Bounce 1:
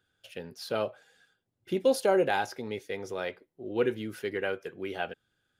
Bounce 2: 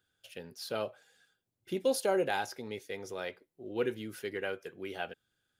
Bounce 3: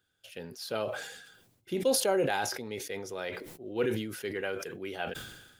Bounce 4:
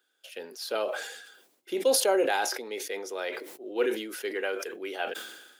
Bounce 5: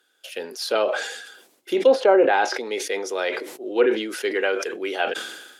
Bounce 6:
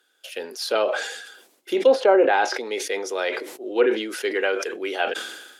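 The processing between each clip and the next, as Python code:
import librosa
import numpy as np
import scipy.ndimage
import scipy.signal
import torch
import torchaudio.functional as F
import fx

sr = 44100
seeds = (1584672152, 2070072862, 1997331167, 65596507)

y1 = fx.high_shelf(x, sr, hz=4300.0, db=7.0)
y1 = F.gain(torch.from_numpy(y1), -5.0).numpy()
y2 = fx.sustainer(y1, sr, db_per_s=53.0)
y2 = F.gain(torch.from_numpy(y2), 1.5).numpy()
y3 = scipy.signal.sosfilt(scipy.signal.butter(4, 310.0, 'highpass', fs=sr, output='sos'), y2)
y3 = F.gain(torch.from_numpy(y3), 3.5).numpy()
y4 = fx.env_lowpass_down(y3, sr, base_hz=1900.0, full_db=-21.0)
y4 = F.gain(torch.from_numpy(y4), 8.5).numpy()
y5 = fx.peak_eq(y4, sr, hz=120.0, db=-7.0, octaves=1.2)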